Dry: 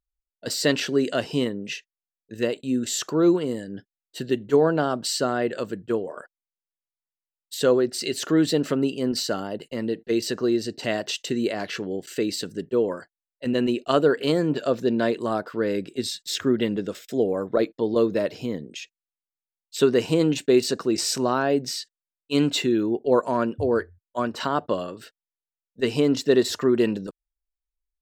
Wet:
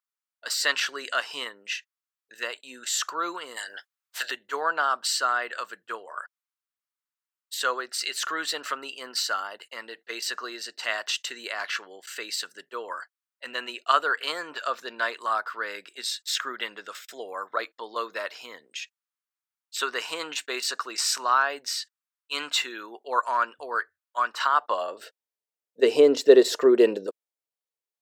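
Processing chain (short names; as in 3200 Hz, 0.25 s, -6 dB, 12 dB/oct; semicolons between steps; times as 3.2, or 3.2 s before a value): 3.56–4.3 spectral limiter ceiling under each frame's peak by 24 dB; high-pass sweep 1200 Hz -> 460 Hz, 24.55–25.15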